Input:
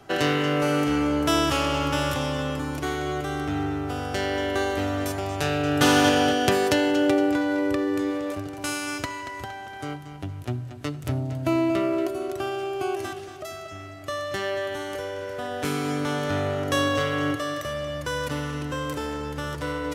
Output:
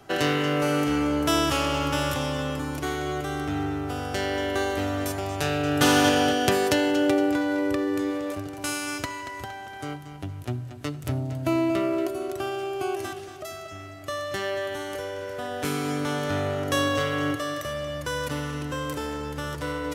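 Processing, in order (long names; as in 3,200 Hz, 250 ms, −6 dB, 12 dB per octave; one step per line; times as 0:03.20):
high-shelf EQ 8,500 Hz +4.5 dB
level −1 dB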